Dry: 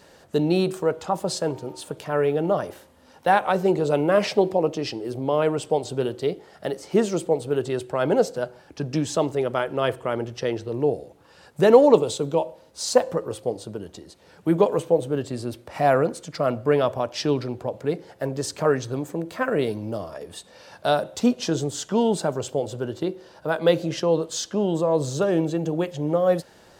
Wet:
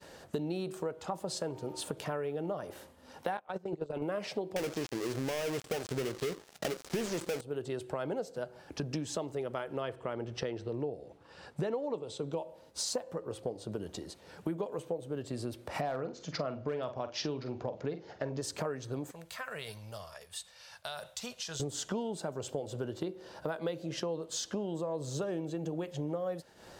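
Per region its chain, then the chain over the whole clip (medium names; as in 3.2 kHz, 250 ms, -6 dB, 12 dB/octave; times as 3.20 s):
3.37–4.02 s: treble shelf 9.5 kHz -11.5 dB + gate -21 dBFS, range -24 dB + compressor with a negative ratio -26 dBFS
4.56–7.41 s: dead-time distortion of 0.29 ms + peaking EQ 5.9 kHz +7 dB 1.6 oct + waveshaping leveller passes 3
9.82–12.33 s: distance through air 52 m + band-stop 6.7 kHz, Q 19
13.18–13.72 s: treble shelf 8.7 kHz -6.5 dB + tape noise reduction on one side only decoder only
15.81–18.42 s: steep low-pass 6.8 kHz 72 dB/octave + overload inside the chain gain 10.5 dB + doubling 46 ms -11 dB
19.11–21.60 s: amplifier tone stack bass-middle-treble 10-0-10 + compression, threshold -35 dBFS
whole clip: compression 8:1, threshold -33 dBFS; expander -51 dBFS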